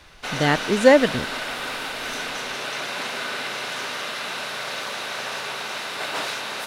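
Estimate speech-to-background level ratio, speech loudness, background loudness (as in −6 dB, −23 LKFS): 9.5 dB, −18.5 LKFS, −28.0 LKFS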